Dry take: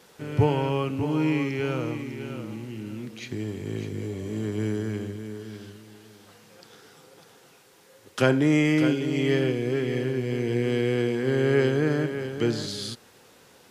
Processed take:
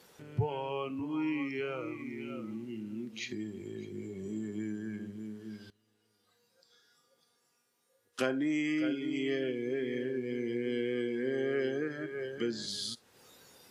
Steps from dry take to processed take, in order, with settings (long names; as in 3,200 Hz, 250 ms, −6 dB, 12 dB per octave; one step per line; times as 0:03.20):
downward compressor 2 to 1, threshold −48 dBFS, peak gain reduction 17.5 dB
noise reduction from a noise print of the clip's start 13 dB
0:05.70–0:08.19: tuned comb filter 240 Hz, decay 1.1 s, mix 90%
level +7 dB